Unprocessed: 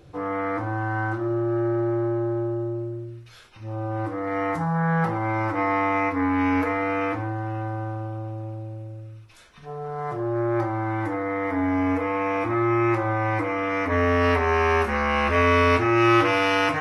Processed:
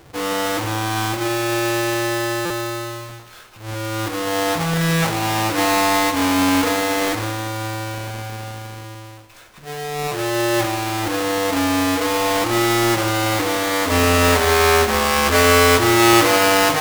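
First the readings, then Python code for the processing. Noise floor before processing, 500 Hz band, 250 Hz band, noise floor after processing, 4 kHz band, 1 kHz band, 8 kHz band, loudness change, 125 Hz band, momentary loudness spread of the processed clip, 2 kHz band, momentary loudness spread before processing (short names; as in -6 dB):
-46 dBFS, +5.0 dB, +4.0 dB, -42 dBFS, +15.5 dB, +5.0 dB, n/a, +6.0 dB, +2.0 dB, 16 LU, +6.0 dB, 15 LU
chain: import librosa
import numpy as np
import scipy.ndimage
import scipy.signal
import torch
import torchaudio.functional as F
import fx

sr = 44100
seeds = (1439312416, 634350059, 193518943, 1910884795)

y = fx.halfwave_hold(x, sr)
y = fx.low_shelf(y, sr, hz=290.0, db=-7.0)
y = fx.echo_feedback(y, sr, ms=159, feedback_pct=56, wet_db=-14.5)
y = fx.buffer_glitch(y, sr, at_s=(2.45,), block=256, repeats=8)
y = F.gain(torch.from_numpy(y), 3.0).numpy()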